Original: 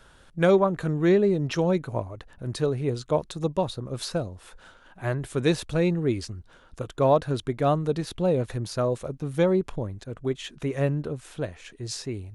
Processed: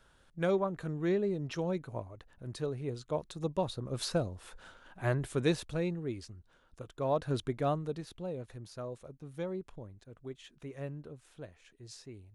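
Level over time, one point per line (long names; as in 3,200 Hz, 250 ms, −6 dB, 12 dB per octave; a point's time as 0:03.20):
0:03.10 −10.5 dB
0:04.08 −3 dB
0:05.18 −3 dB
0:06.04 −12.5 dB
0:07.05 −12.5 dB
0:07.36 −4.5 dB
0:08.29 −16 dB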